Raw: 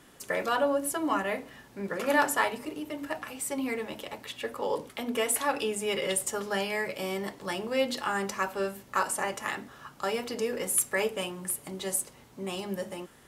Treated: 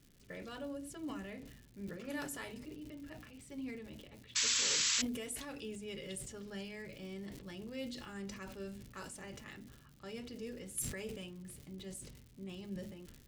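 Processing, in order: painted sound noise, 4.35–5.02, 920–7900 Hz -18 dBFS; low-pass opened by the level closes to 2600 Hz, open at -20.5 dBFS; crackle 220/s -38 dBFS; passive tone stack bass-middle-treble 10-0-1; sustainer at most 48 dB/s; gain +8 dB

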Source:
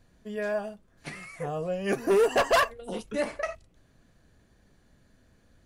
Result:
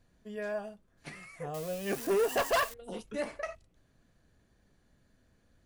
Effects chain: 1.54–2.74 switching spikes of -26 dBFS; gain -6 dB

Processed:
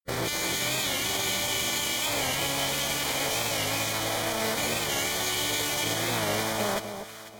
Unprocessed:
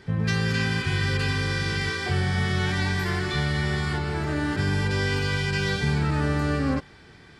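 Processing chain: minimum comb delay 0.43 ms; HPF 360 Hz 12 dB/oct; limiter -26.5 dBFS, peak gain reduction 10.5 dB; formant shift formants +6 st; bit-crush 6-bit; formant-preserving pitch shift -5 st; Butterworth band-stop 2700 Hz, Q 6.7; echo with dull and thin repeats by turns 0.247 s, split 1100 Hz, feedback 56%, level -7.5 dB; record warp 45 rpm, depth 100 cents; gain +7.5 dB

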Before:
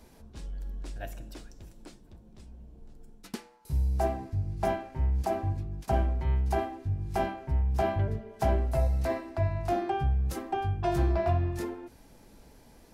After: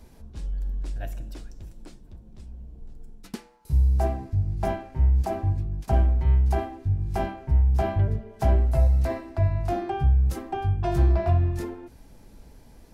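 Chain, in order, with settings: low shelf 150 Hz +9 dB

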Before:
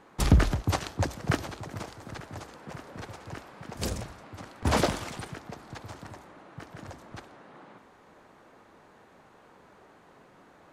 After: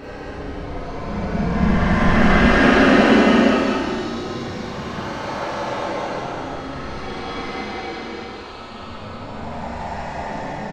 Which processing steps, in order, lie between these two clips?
LPF 3600 Hz 12 dB/oct; low shelf 85 Hz -8.5 dB; whisperiser; Paulstretch 24×, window 0.10 s, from 1.22; on a send: echo 0.19 s -4.5 dB; on the sum: Schroeder reverb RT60 0.6 s, combs from 30 ms, DRR -4.5 dB; gain +5 dB

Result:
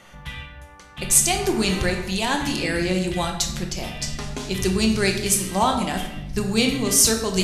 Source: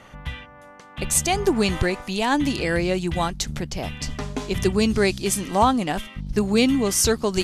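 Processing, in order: high shelf 2800 Hz +9.5 dB; shoebox room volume 370 m³, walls mixed, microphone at 0.92 m; gain -4.5 dB

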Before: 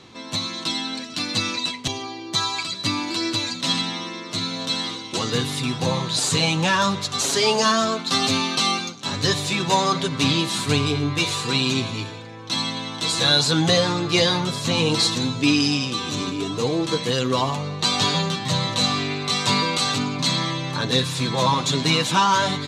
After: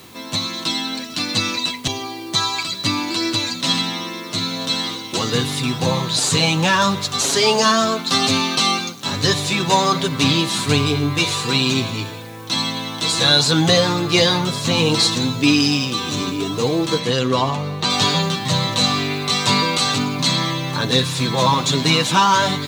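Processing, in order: added noise white -52 dBFS; 16.98–17.89 high shelf 12000 Hz -> 5800 Hz -11.5 dB; gain +3.5 dB

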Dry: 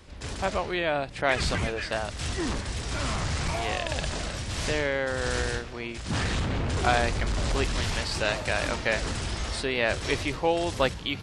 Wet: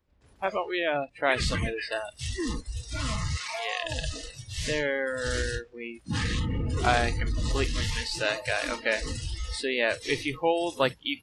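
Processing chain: 3.37–3.83 weighting filter A; spectral noise reduction 23 dB; mismatched tape noise reduction decoder only

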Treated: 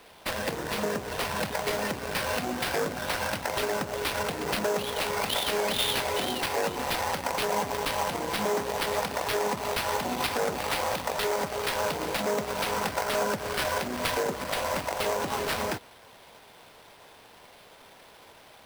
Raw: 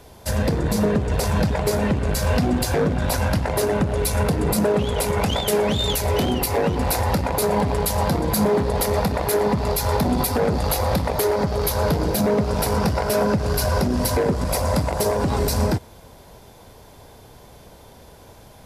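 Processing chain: HPF 1100 Hz 6 dB/oct; limiter -17 dBFS, peak gain reduction 7.5 dB; sample-rate reducer 7000 Hz, jitter 20%

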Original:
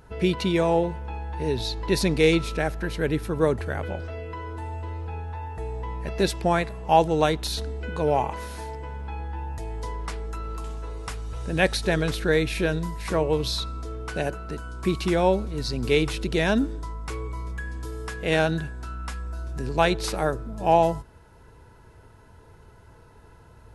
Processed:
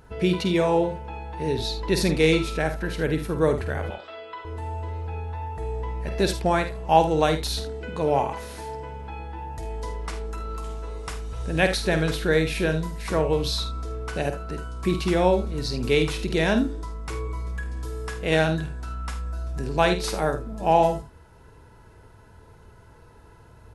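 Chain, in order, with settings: 3.9–4.45 speaker cabinet 480–7400 Hz, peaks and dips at 490 Hz -8 dB, 1200 Hz +6 dB, 3500 Hz +10 dB, 6100 Hz -10 dB; early reflections 50 ms -9 dB, 77 ms -13.5 dB

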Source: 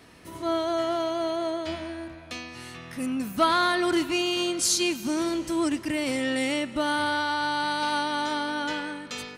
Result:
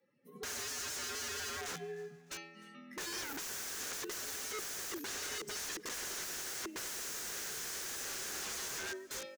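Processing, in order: per-bin expansion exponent 2; frequency shift +86 Hz; 0.62–1.62 band shelf 5200 Hz -14.5 dB 1.2 oct; wrapped overs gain 40.5 dB; fifteen-band EQ 400 Hz +9 dB, 1600 Hz +8 dB, 6300 Hz +9 dB; feedback echo 0.303 s, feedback 46%, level -24 dB

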